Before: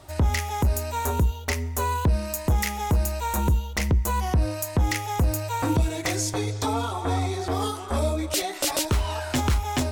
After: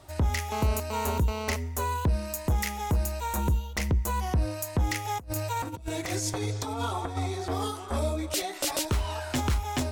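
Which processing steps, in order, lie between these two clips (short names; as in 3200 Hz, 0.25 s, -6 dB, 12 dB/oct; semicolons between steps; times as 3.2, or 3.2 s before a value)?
0.52–1.56 GSM buzz -30 dBFS; 5.05–7.17 negative-ratio compressor -27 dBFS, ratio -0.5; gain -4 dB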